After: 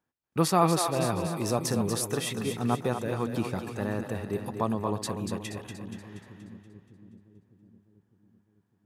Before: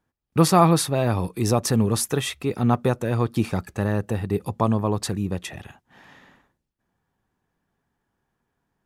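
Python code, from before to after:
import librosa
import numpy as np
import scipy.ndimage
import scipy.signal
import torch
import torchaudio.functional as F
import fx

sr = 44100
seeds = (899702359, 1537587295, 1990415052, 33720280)

p1 = fx.highpass(x, sr, hz=160.0, slope=6)
p2 = p1 + fx.echo_split(p1, sr, split_hz=340.0, low_ms=605, high_ms=238, feedback_pct=52, wet_db=-7.0, dry=0)
y = p2 * 10.0 ** (-6.0 / 20.0)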